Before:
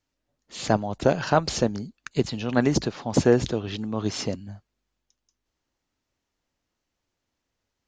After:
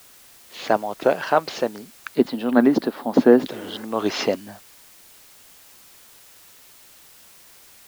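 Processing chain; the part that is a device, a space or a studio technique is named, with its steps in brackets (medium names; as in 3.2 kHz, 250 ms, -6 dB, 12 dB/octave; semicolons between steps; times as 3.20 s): 3.55–3.80 s: spectral replace 220–2800 Hz both; dictaphone (band-pass 380–3400 Hz; level rider gain up to 16.5 dB; wow and flutter; white noise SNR 23 dB); 2.15–3.47 s: fifteen-band graphic EQ 100 Hz -4 dB, 250 Hz +11 dB, 2.5 kHz -7 dB, 6.3 kHz -8 dB; trim -3 dB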